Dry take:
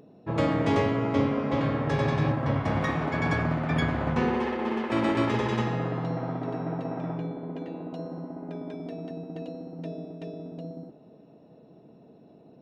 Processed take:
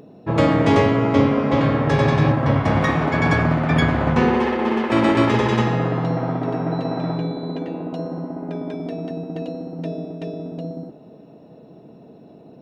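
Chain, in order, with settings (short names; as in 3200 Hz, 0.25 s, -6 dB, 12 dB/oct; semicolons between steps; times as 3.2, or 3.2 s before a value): 6.71–7.57 whine 4000 Hz -53 dBFS; gain +8.5 dB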